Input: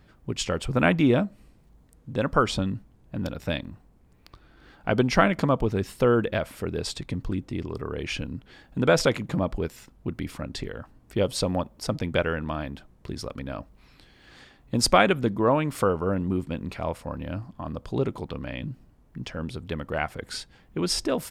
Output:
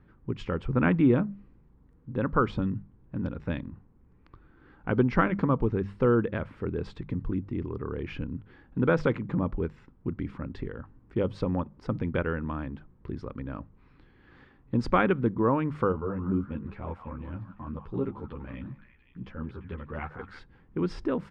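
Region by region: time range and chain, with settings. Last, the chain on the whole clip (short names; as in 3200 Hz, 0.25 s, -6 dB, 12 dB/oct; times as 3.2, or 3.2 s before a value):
15.92–20.39 delay with a stepping band-pass 0.172 s, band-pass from 1100 Hz, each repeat 0.7 oct, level -6 dB + ensemble effect
whole clip: LPF 1400 Hz 12 dB/oct; bell 660 Hz -12.5 dB 0.5 oct; notches 50/100/150/200 Hz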